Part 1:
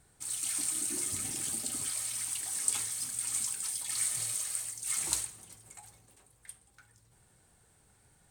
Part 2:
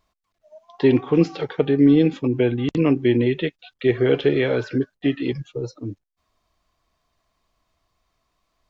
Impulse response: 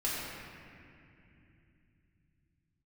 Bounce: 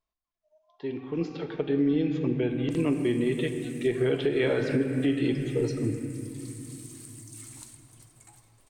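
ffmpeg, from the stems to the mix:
-filter_complex "[0:a]acompressor=threshold=-40dB:ratio=6,adelay=2500,volume=-5dB,asplit=2[link_01][link_02];[link_02]volume=-16dB[link_03];[1:a]volume=-1dB,afade=type=in:start_time=0.96:duration=0.77:silence=0.251189,afade=type=in:start_time=3.94:duration=0.36:silence=0.421697,asplit=3[link_04][link_05][link_06];[link_05]volume=-10dB[link_07];[link_06]apad=whole_len=476423[link_08];[link_01][link_08]sidechaincompress=threshold=-33dB:ratio=8:attack=16:release=1500[link_09];[2:a]atrim=start_sample=2205[link_10];[link_03][link_07]amix=inputs=2:normalize=0[link_11];[link_11][link_10]afir=irnorm=-1:irlink=0[link_12];[link_09][link_04][link_12]amix=inputs=3:normalize=0,alimiter=limit=-16dB:level=0:latency=1:release=288"

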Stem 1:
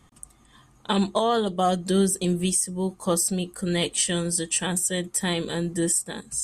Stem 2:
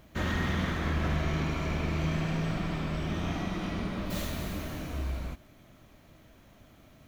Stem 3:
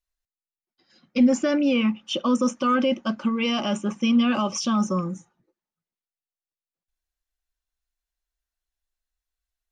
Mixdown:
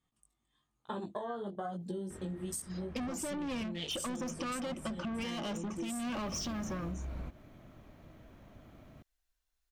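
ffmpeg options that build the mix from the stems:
ffmpeg -i stem1.wav -i stem2.wav -i stem3.wav -filter_complex "[0:a]afwtdn=0.0355,equalizer=frequency=3300:width=1.5:gain=5,flanger=delay=17:depth=4.1:speed=1.1,volume=-6.5dB,asplit=2[link_01][link_02];[1:a]acompressor=threshold=-38dB:ratio=3,highshelf=frequency=2400:gain=-11,adelay=1950,volume=1.5dB[link_03];[2:a]asoftclip=type=tanh:threshold=-28dB,adelay=1800,volume=2.5dB[link_04];[link_02]apad=whole_len=397932[link_05];[link_03][link_05]sidechaincompress=threshold=-47dB:ratio=12:attack=24:release=343[link_06];[link_01][link_04]amix=inputs=2:normalize=0,acompressor=threshold=-32dB:ratio=6,volume=0dB[link_07];[link_06][link_07]amix=inputs=2:normalize=0,acompressor=threshold=-35dB:ratio=6" out.wav

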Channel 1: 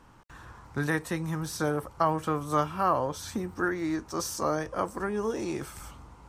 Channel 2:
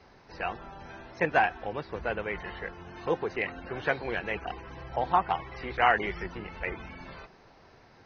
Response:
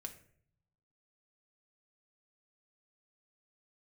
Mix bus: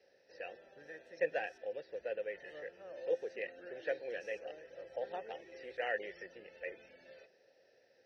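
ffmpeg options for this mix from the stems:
-filter_complex "[0:a]volume=-13dB,asplit=3[link_01][link_02][link_03];[link_01]atrim=end=1.58,asetpts=PTS-STARTPTS,afade=type=out:start_time=1.576:duration=0.004:curve=hsin[link_04];[link_02]atrim=start=1.58:end=2.42,asetpts=PTS-STARTPTS,volume=0[link_05];[link_03]atrim=start=2.42,asetpts=PTS-STARTPTS,afade=type=in:duration=0.004:curve=hsin[link_06];[link_04][link_05][link_06]concat=n=3:v=0:a=1[link_07];[1:a]highshelf=frequency=3300:width_type=q:width=1.5:gain=7,volume=-0.5dB[link_08];[link_07][link_08]amix=inputs=2:normalize=0,asplit=3[link_09][link_10][link_11];[link_09]bandpass=frequency=530:width_type=q:width=8,volume=0dB[link_12];[link_10]bandpass=frequency=1840:width_type=q:width=8,volume=-6dB[link_13];[link_11]bandpass=frequency=2480:width_type=q:width=8,volume=-9dB[link_14];[link_12][link_13][link_14]amix=inputs=3:normalize=0,equalizer=frequency=5600:width_type=o:width=0.23:gain=11.5"

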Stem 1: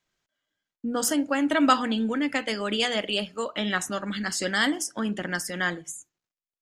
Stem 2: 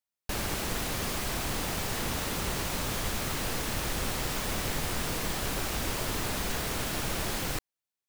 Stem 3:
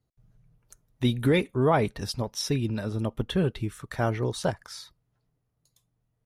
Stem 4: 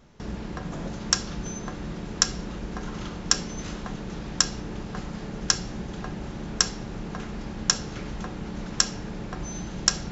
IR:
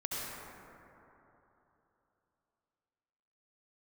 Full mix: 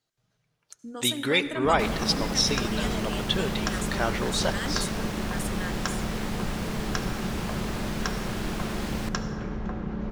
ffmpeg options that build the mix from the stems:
-filter_complex "[0:a]aexciter=amount=5.4:drive=6.1:freq=6800,volume=-11.5dB,asplit=2[link_01][link_02];[link_02]volume=-19dB[link_03];[1:a]adelay=1500,volume=-3dB,asplit=2[link_04][link_05];[link_05]volume=-12.5dB[link_06];[2:a]highpass=frequency=630:poles=1,equalizer=frequency=4900:width=0.54:gain=11,volume=0.5dB,asplit=2[link_07][link_08];[link_08]volume=-14.5dB[link_09];[3:a]lowpass=frequency=1400:poles=1,adelay=1450,volume=-1dB,asplit=2[link_10][link_11];[link_11]volume=-9dB[link_12];[4:a]atrim=start_sample=2205[link_13];[link_03][link_06][link_09][link_12]amix=inputs=4:normalize=0[link_14];[link_14][link_13]afir=irnorm=-1:irlink=0[link_15];[link_01][link_04][link_07][link_10][link_15]amix=inputs=5:normalize=0,highshelf=frequency=7600:gain=-11.5"

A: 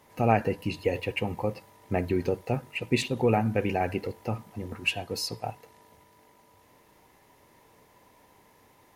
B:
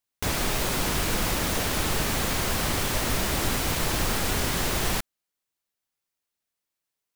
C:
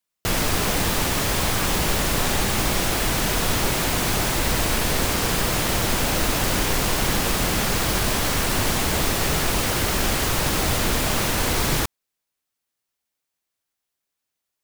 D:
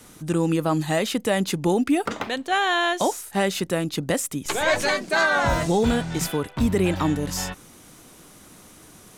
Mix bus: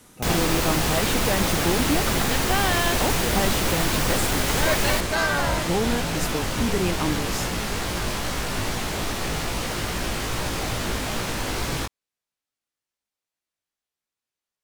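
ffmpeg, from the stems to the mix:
ffmpeg -i stem1.wav -i stem2.wav -i stem3.wav -i stem4.wav -filter_complex "[0:a]volume=-9dB[link_01];[1:a]volume=1dB[link_02];[2:a]flanger=delay=16.5:depth=3.1:speed=2.4,highshelf=frequency=12000:gain=-11,volume=-1.5dB[link_03];[3:a]volume=-4dB[link_04];[link_01][link_02][link_03][link_04]amix=inputs=4:normalize=0" out.wav

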